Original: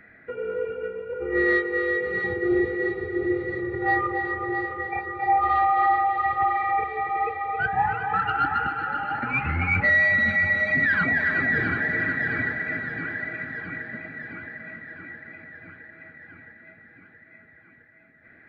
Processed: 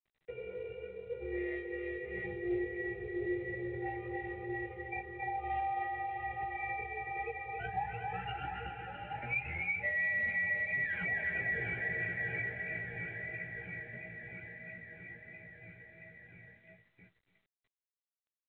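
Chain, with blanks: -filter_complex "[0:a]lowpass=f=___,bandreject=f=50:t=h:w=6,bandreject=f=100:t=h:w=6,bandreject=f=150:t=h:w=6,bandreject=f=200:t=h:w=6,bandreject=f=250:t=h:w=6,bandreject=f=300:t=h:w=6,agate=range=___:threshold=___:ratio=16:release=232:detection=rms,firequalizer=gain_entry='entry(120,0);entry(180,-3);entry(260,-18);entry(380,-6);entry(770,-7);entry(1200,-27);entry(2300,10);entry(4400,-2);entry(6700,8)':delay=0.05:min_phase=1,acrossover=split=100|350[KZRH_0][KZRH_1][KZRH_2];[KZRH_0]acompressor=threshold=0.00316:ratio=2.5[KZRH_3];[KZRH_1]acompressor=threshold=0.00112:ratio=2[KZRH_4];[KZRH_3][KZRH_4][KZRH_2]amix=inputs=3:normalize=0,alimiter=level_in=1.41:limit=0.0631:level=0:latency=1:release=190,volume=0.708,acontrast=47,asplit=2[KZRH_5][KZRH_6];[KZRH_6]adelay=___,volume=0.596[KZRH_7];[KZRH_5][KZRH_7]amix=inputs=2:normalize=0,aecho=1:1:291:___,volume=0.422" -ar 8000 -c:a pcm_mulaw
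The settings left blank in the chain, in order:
1.3k, 0.00562, 0.00282, 17, 0.0841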